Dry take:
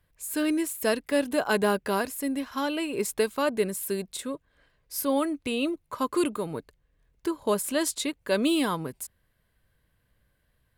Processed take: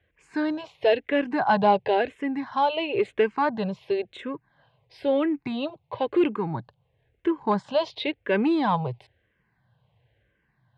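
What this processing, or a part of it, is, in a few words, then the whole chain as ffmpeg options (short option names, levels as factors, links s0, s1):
barber-pole phaser into a guitar amplifier: -filter_complex "[0:a]asplit=2[s0][s1];[s1]afreqshift=-0.98[s2];[s0][s2]amix=inputs=2:normalize=1,asoftclip=type=tanh:threshold=0.112,highpass=100,equalizer=f=120:t=q:w=4:g=9,equalizer=f=260:t=q:w=4:g=-7,equalizer=f=810:t=q:w=4:g=8,equalizer=f=1300:t=q:w=4:g=-8,lowpass=f=3400:w=0.5412,lowpass=f=3400:w=1.3066,volume=2.37"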